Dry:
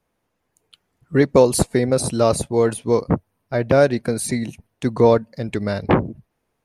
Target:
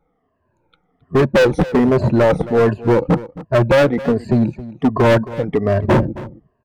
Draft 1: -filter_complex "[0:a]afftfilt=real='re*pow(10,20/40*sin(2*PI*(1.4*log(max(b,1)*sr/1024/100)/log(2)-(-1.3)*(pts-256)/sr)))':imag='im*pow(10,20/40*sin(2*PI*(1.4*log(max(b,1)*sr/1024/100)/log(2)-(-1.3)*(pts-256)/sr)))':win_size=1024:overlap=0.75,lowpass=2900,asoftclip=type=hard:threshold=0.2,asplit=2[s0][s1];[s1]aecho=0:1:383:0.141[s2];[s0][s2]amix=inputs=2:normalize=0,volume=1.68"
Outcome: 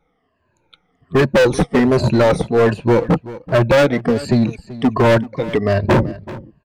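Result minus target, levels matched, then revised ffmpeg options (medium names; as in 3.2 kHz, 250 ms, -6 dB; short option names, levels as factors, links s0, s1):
echo 114 ms late; 4 kHz band +2.5 dB
-filter_complex "[0:a]afftfilt=real='re*pow(10,20/40*sin(2*PI*(1.4*log(max(b,1)*sr/1024/100)/log(2)-(-1.3)*(pts-256)/sr)))':imag='im*pow(10,20/40*sin(2*PI*(1.4*log(max(b,1)*sr/1024/100)/log(2)-(-1.3)*(pts-256)/sr)))':win_size=1024:overlap=0.75,lowpass=1300,asoftclip=type=hard:threshold=0.2,asplit=2[s0][s1];[s1]aecho=0:1:269:0.141[s2];[s0][s2]amix=inputs=2:normalize=0,volume=1.68"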